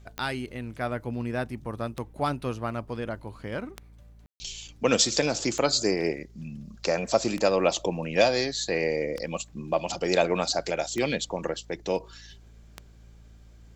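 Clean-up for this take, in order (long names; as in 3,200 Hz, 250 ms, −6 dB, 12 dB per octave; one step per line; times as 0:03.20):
click removal
hum removal 55.9 Hz, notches 4
ambience match 0:04.26–0:04.40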